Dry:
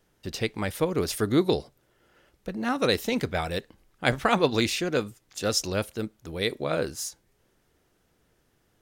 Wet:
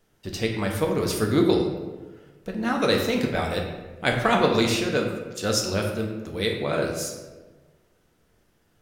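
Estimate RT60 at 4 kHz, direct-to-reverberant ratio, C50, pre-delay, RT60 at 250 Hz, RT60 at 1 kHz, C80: 0.80 s, 0.5 dB, 4.5 dB, 4 ms, 1.5 s, 1.2 s, 6.5 dB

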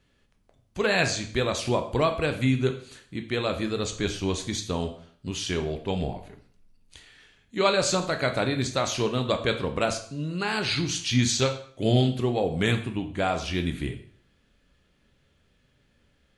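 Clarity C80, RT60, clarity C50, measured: 14.0 dB, 0.50 s, 11.0 dB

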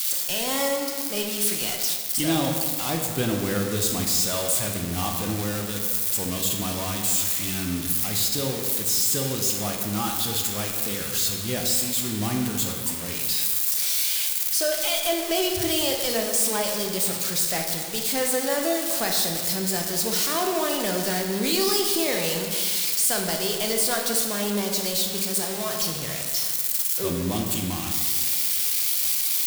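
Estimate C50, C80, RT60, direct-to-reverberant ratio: 3.5 dB, 5.0 dB, 1.8 s, 1.5 dB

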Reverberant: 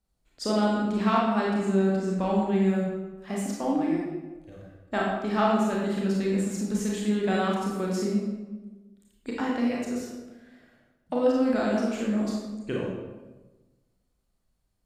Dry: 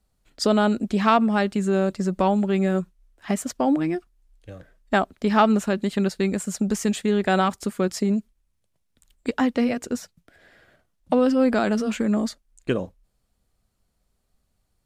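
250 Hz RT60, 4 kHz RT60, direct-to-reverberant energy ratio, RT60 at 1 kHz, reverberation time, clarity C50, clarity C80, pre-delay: 1.4 s, 0.80 s, -3.5 dB, 1.1 s, 1.2 s, 0.0 dB, 2.5 dB, 27 ms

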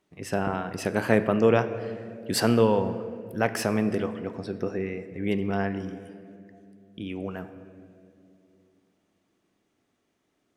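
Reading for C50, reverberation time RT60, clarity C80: 12.0 dB, 2.6 s, 13.0 dB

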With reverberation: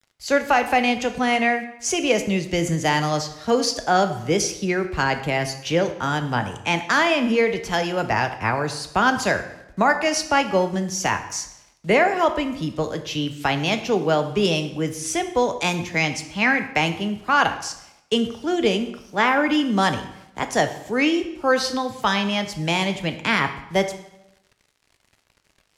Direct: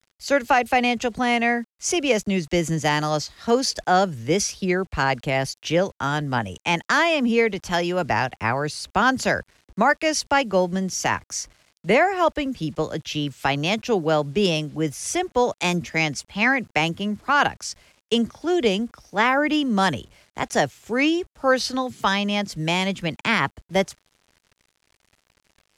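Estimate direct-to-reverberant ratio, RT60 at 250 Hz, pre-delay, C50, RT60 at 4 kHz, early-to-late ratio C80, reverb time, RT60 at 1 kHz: 7.5 dB, 0.85 s, 4 ms, 11.0 dB, 0.70 s, 13.5 dB, 0.85 s, 0.80 s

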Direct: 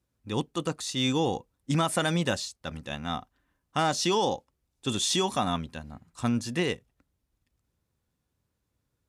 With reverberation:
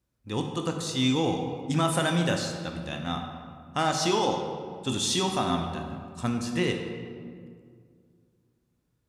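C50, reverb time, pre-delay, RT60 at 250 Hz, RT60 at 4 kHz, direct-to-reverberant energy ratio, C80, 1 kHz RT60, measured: 5.0 dB, 2.1 s, 13 ms, 2.6 s, 1.2 s, 3.0 dB, 6.5 dB, 1.9 s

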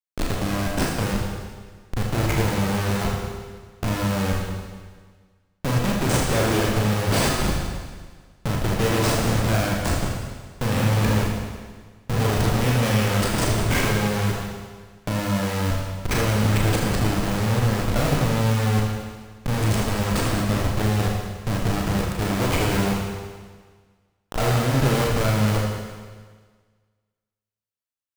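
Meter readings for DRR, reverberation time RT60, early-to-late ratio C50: -2.5 dB, 1.6 s, 1.0 dB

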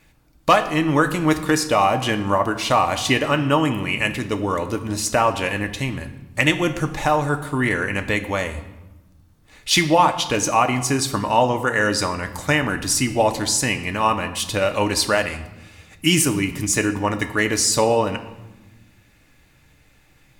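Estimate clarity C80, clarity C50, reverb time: 14.0 dB, 12.0 dB, 1.1 s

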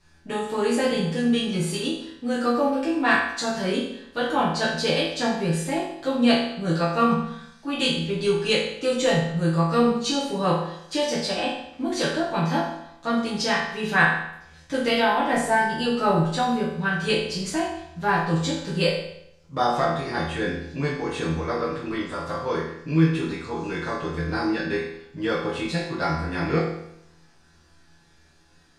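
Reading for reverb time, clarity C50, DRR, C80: 0.75 s, 2.0 dB, -9.5 dB, 5.5 dB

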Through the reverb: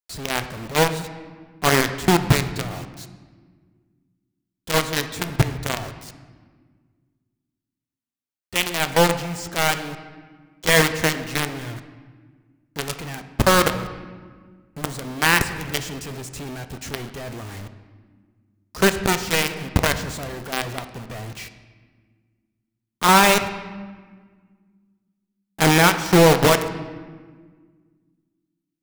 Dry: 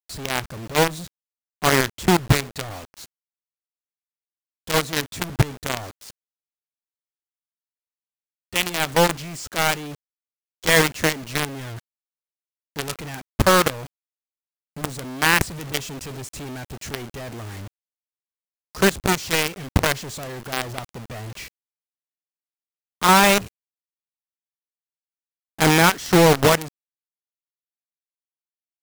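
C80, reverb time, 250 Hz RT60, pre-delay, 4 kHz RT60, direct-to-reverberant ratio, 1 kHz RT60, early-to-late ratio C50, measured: 12.5 dB, 1.6 s, 2.4 s, 4 ms, 1.1 s, 8.5 dB, 1.5 s, 11.0 dB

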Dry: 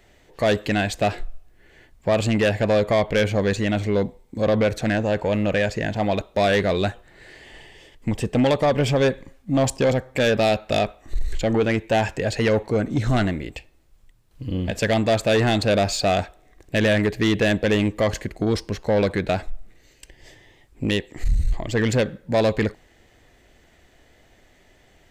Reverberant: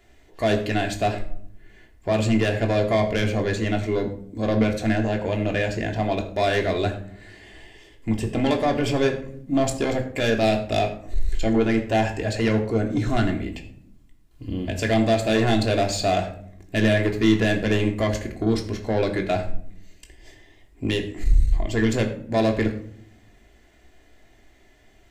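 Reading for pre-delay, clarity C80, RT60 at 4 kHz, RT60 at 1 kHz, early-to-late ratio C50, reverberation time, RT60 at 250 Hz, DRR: 3 ms, 13.0 dB, 0.35 s, 0.50 s, 11.0 dB, 0.65 s, 1.2 s, 2.0 dB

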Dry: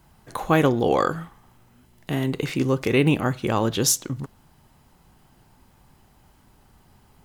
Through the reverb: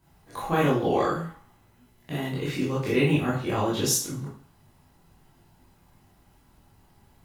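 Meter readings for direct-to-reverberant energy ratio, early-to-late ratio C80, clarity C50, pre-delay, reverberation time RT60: -8.0 dB, 9.0 dB, 3.5 dB, 11 ms, 0.45 s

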